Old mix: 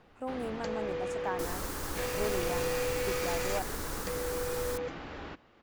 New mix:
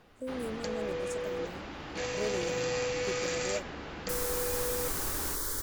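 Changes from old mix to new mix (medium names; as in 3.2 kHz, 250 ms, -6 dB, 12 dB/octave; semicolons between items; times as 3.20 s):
speech: add brick-wall FIR band-stop 670–3000 Hz; second sound: entry +2.70 s; master: add treble shelf 5 kHz +9 dB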